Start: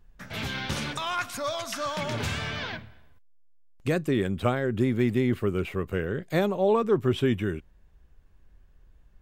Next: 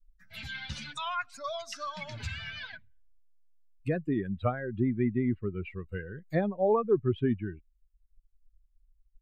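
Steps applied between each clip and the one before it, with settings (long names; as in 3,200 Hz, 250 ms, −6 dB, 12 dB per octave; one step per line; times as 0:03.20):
spectral dynamics exaggerated over time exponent 2
treble cut that deepens with the level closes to 1,900 Hz, closed at −28.5 dBFS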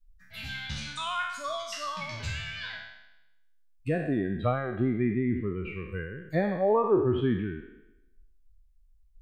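peak hold with a decay on every bin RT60 0.91 s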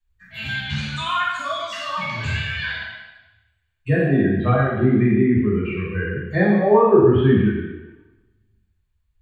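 convolution reverb RT60 0.90 s, pre-delay 3 ms, DRR −7.5 dB
level −8 dB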